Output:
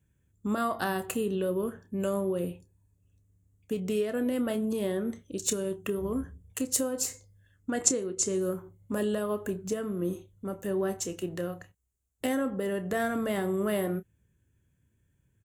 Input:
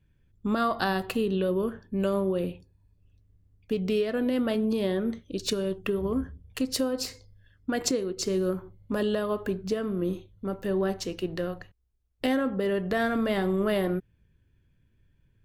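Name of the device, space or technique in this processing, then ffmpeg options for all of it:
budget condenser microphone: -filter_complex "[0:a]asettb=1/sr,asplit=3[a][b][c];[a]atrim=end=7.704[d];[b]atrim=start=7.7:end=8.41,asetpts=PTS-STARTPTS,afade=t=in:d=0.004:c=qsin,afade=t=out:st=0.706:d=0.004:c=qsin,lowpass=f=9.9k:w=0.5412,lowpass=f=9.9k:w=1.3066[e];[c]atrim=start=8.406[f];[d][e]acrossfade=d=0.004:c1=hsin:c2=qsin[g];[g][f]acrossfade=d=0.004:c1=qsin:c2=hsin,highpass=61,highshelf=f=5.8k:t=q:w=3:g=7.5,bandreject=f=2.4k:w=28,asplit=2[h][i];[i]adelay=29,volume=-13dB[j];[h][j]amix=inputs=2:normalize=0,volume=-3dB"

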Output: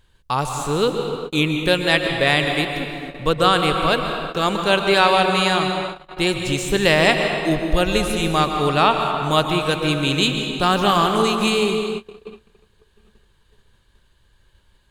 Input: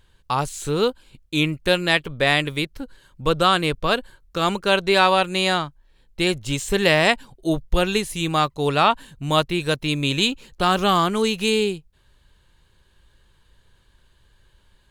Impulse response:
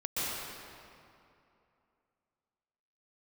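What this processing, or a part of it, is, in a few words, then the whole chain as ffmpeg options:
keyed gated reverb: -filter_complex "[0:a]asplit=3[a][b][c];[1:a]atrim=start_sample=2205[d];[b][d]afir=irnorm=-1:irlink=0[e];[c]apad=whole_len=657467[f];[e][f]sidechaingate=range=-33dB:threshold=-53dB:ratio=16:detection=peak,volume=-9dB[g];[a][g]amix=inputs=2:normalize=0,volume=-1dB"

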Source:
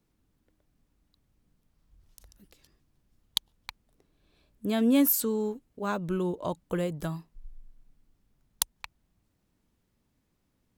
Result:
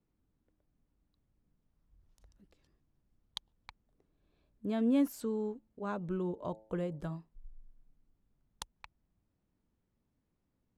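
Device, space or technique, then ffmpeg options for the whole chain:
through cloth: -filter_complex "[0:a]asettb=1/sr,asplit=3[a][b][c];[a]atrim=end=5.544[d];[b]atrim=start=5.54:end=7.19,asetpts=PTS-STARTPTS,afade=t=in:d=0.004:c=qsin,afade=t=out:st=1.646:d=0.004:c=qsin,bandreject=f=109:t=h:w=4,bandreject=f=218:t=h:w=4,bandreject=f=327:t=h:w=4,bandreject=f=436:t=h:w=4,bandreject=f=545:t=h:w=4,bandreject=f=654:t=h:w=4,bandreject=f=763:t=h:w=4,bandreject=f=872:t=h:w=4[e];[c]atrim=start=7.186[f];[d][e]acrossfade=d=0.004:c1=hsin:c2=qsin[g];[g][f]acrossfade=d=0.004:c1=qsin:c2=hsin,lowpass=8.7k,highshelf=f=2.2k:g=-11,volume=-5.5dB"

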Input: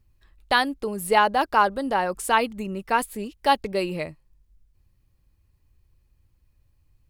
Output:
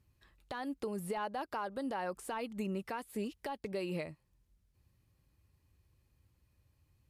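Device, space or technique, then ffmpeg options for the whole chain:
podcast mastering chain: -af "highpass=77,deesser=0.8,acompressor=threshold=-31dB:ratio=4,alimiter=level_in=2dB:limit=-24dB:level=0:latency=1:release=201,volume=-2dB,volume=-1.5dB" -ar 32000 -c:a libmp3lame -b:a 112k

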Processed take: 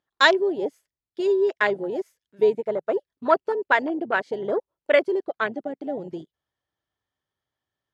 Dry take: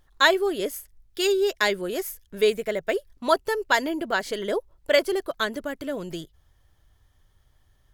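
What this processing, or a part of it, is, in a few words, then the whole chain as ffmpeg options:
over-cleaned archive recording: -filter_complex "[0:a]highpass=200,lowpass=5.3k,afwtdn=0.0447,asettb=1/sr,asplit=3[a][b][c];[a]atrim=end=5.164[d];[b]atrim=start=5.16:end=5.83,asetpts=PTS-STARTPTS,afade=t=in:d=0.004:c=qsin,afade=t=out:st=0.666:d=0.004:c=qsin,lowpass=8k[e];[c]atrim=start=5.826[f];[d][e]acrossfade=d=0.004:c1=hsin:c2=qsin[g];[g][f]acrossfade=d=0.004:c1=qsin:c2=hsin,volume=2dB"

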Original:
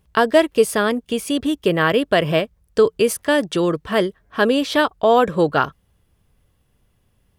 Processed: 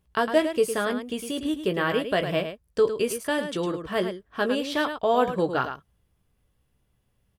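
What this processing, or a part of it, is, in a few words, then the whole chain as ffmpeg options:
slapback doubling: -filter_complex "[0:a]asplit=3[a][b][c];[b]adelay=16,volume=-8.5dB[d];[c]adelay=107,volume=-8.5dB[e];[a][d][e]amix=inputs=3:normalize=0,volume=-8.5dB"

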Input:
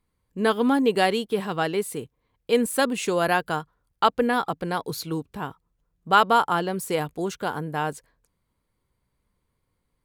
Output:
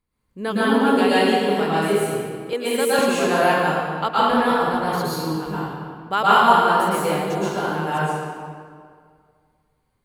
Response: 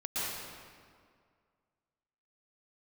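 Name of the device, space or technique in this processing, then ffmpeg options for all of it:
stairwell: -filter_complex "[1:a]atrim=start_sample=2205[a];[0:a][a]afir=irnorm=-1:irlink=0,asettb=1/sr,asplit=3[b][c][d];[b]atrim=end=2.534[e];[c]atrim=start=2.53:end=2.99,asetpts=PTS-STARTPTS,afade=t=in:d=0.004:c=qsin,afade=t=out:st=0.456:d=0.004:c=qsin,highpass=f=280:w=0.5412,highpass=f=280:w=1.3066[f];[d]atrim=start=2.986[g];[e][f]acrossfade=d=0.004:c1=hsin:c2=qsin[h];[h][g]acrossfade=d=0.004:c1=qsin:c2=hsin,volume=-1dB"

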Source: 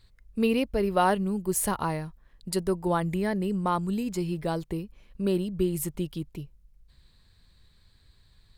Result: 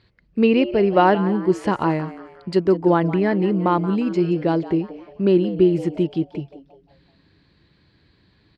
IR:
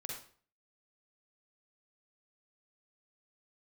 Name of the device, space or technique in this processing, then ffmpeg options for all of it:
frequency-shifting delay pedal into a guitar cabinet: -filter_complex "[0:a]highshelf=f=11k:g=11,asplit=5[a][b][c][d][e];[b]adelay=177,afreqshift=130,volume=-15.5dB[f];[c]adelay=354,afreqshift=260,volume=-23dB[g];[d]adelay=531,afreqshift=390,volume=-30.6dB[h];[e]adelay=708,afreqshift=520,volume=-38.1dB[i];[a][f][g][h][i]amix=inputs=5:normalize=0,highpass=110,equalizer=f=330:t=q:w=4:g=7,equalizer=f=1.2k:t=q:w=4:g=-3,equalizer=f=3.7k:t=q:w=4:g=-8,lowpass=f=4.1k:w=0.5412,lowpass=f=4.1k:w=1.3066,volume=7.5dB"

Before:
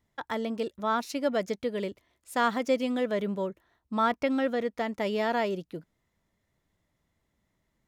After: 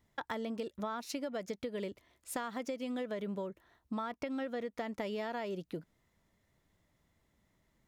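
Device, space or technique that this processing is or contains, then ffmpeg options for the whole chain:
serial compression, leveller first: -af "acompressor=threshold=-28dB:ratio=2.5,acompressor=threshold=-38dB:ratio=5,volume=2dB"

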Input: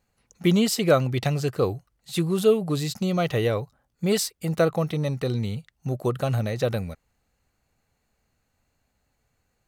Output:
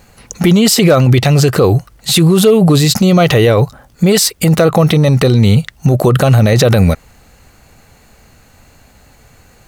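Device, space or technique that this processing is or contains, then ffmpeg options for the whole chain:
loud club master: -af "acompressor=threshold=-29dB:ratio=1.5,asoftclip=type=hard:threshold=-16.5dB,alimiter=level_in=28.5dB:limit=-1dB:release=50:level=0:latency=1,volume=-1dB"

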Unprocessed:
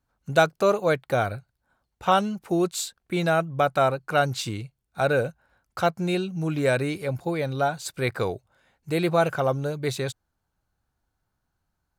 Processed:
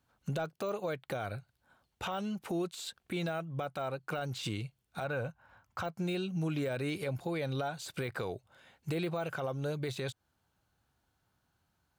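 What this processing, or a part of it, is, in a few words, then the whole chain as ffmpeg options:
broadcast voice chain: -filter_complex "[0:a]asettb=1/sr,asplit=3[a][b][c];[a]atrim=end=5.044[d];[b]atrim=start=5.04:end=5.84,asetpts=PTS-STARTPTS,afade=t=in:d=0.004:c=qsin,afade=t=out:st=0.796:d=0.004:c=qsin,equalizer=f=100:t=o:w=0.67:g=7,equalizer=f=400:t=o:w=0.67:g=-5,equalizer=f=1k:t=o:w=0.67:g=7,equalizer=f=4k:t=o:w=0.67:g=-5,equalizer=f=10k:t=o:w=0.67:g=-10[e];[c]atrim=start=5.836[f];[d][e]acrossfade=d=0.004:c1=hsin:c2=qsin[g];[g][f]acrossfade=d=0.004:c1=qsin:c2=hsin,highpass=71,deesser=0.85,acompressor=threshold=-35dB:ratio=4,equalizer=f=3.1k:t=o:w=0.76:g=5,alimiter=level_in=5dB:limit=-24dB:level=0:latency=1:release=34,volume=-5dB,volume=2.5dB"

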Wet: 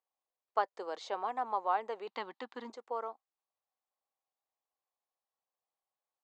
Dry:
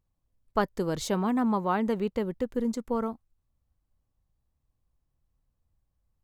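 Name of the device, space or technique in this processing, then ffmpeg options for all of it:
phone speaker on a table: -filter_complex "[0:a]acrossover=split=5400[a][b];[b]acompressor=threshold=-53dB:ratio=4:attack=1:release=60[c];[a][c]amix=inputs=2:normalize=0,asettb=1/sr,asplit=3[d][e][f];[d]atrim=end=2.074[g];[e]atrim=start=2.07:end=2.7,asetpts=PTS-STARTPTS,afade=t=in:d=0.004:c=qsin,afade=t=out:st=0.626:d=0.004:c=qsin,equalizer=f=125:t=o:w=1:g=10,equalizer=f=250:t=o:w=1:g=10,equalizer=f=500:t=o:w=1:g=-11,equalizer=f=1k:t=o:w=1:g=9,equalizer=f=2k:t=o:w=1:g=4,equalizer=f=4k:t=o:w=1:g=12,equalizer=f=8k:t=o:w=1:g=-3[h];[f]atrim=start=2.696[i];[g][h]acrossfade=d=0.004:c1=hsin:c2=qsin[j];[j][i]acrossfade=d=0.004:c1=qsin:c2=hsin,highpass=f=450:w=0.5412,highpass=f=450:w=1.3066,equalizer=f=770:t=q:w=4:g=8,equalizer=f=1.1k:t=q:w=4:g=4,equalizer=f=5.7k:t=q:w=4:g=-3,lowpass=f=7k:w=0.5412,lowpass=f=7k:w=1.3066,volume=-7.5dB"

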